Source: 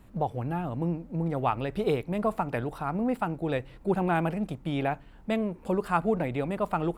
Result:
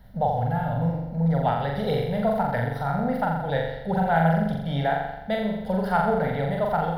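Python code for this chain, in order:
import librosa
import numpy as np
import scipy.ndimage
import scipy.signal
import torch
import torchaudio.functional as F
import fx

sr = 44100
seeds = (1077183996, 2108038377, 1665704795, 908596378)

y = fx.fixed_phaser(x, sr, hz=1700.0, stages=8)
y = fx.room_flutter(y, sr, wall_m=7.3, rt60_s=0.93)
y = y * 10.0 ** (5.0 / 20.0)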